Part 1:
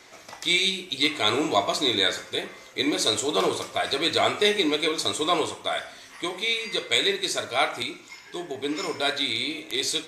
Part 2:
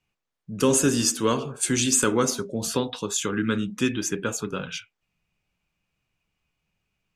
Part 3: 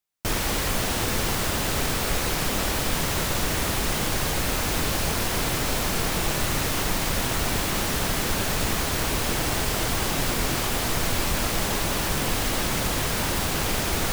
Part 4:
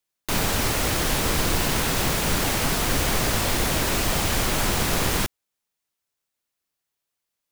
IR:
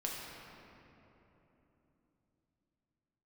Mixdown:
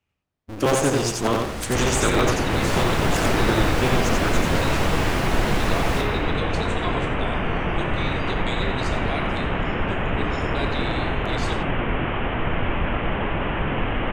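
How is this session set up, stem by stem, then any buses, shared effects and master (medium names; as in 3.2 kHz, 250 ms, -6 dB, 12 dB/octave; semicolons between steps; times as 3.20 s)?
-7.5 dB, 1.55 s, bus A, send -6.5 dB, echo send -11 dB, none
0.0 dB, 0.00 s, no bus, no send, echo send -3 dB, cycle switcher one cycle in 2, inverted
+3.0 dB, 1.50 s, no bus, no send, no echo send, steep low-pass 3.1 kHz 72 dB/octave
2.38 s -19 dB -> 2.61 s -8.5 dB, 0.75 s, bus A, send -4.5 dB, no echo send, level rider gain up to 10 dB
bus A: 0.0 dB, low-pass 12 kHz 12 dB/octave; compression, threshold -30 dBFS, peak gain reduction 11.5 dB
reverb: on, RT60 3.4 s, pre-delay 6 ms
echo: feedback delay 89 ms, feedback 18%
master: treble shelf 4.2 kHz -9 dB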